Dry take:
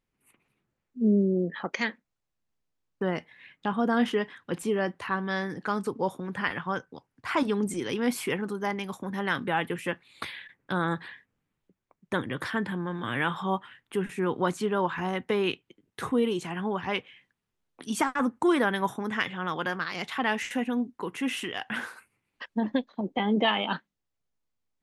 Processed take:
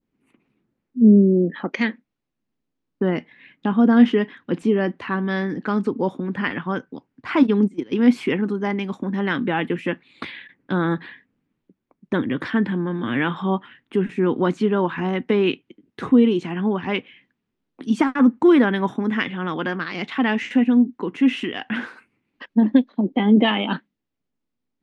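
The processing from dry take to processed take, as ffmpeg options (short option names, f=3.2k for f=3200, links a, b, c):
-filter_complex "[0:a]asplit=3[a][b][c];[a]afade=t=out:st=7.42:d=0.02[d];[b]agate=range=-19dB:threshold=-30dB:ratio=16:release=100:detection=peak,afade=t=in:st=7.42:d=0.02,afade=t=out:st=7.91:d=0.02[e];[c]afade=t=in:st=7.91:d=0.02[f];[d][e][f]amix=inputs=3:normalize=0,adynamicequalizer=threshold=0.00794:dfrequency=2400:dqfactor=1:tfrequency=2400:tqfactor=1:attack=5:release=100:ratio=0.375:range=2.5:mode=boostabove:tftype=bell,lowpass=4.9k,equalizer=f=260:w=1:g=13.5"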